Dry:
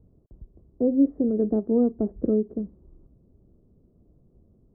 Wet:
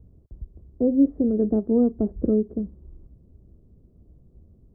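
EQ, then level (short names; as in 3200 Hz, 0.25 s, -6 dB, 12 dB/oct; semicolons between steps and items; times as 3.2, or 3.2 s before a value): bell 68 Hz +5 dB 0.71 oct; low shelf 150 Hz +6.5 dB; 0.0 dB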